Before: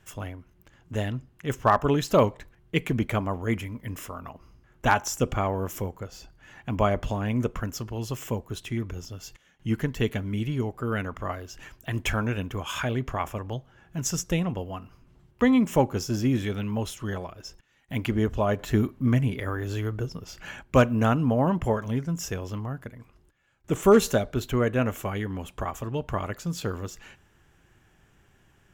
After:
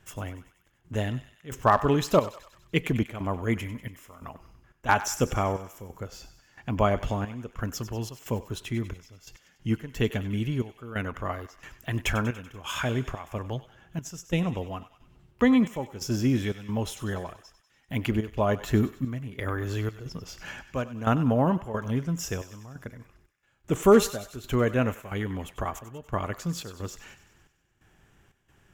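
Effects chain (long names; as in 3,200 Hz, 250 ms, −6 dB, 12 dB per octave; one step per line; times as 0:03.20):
gate pattern "xxx..xxx.x" 89 BPM −12 dB
on a send: feedback echo with a high-pass in the loop 96 ms, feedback 62%, high-pass 960 Hz, level −13 dB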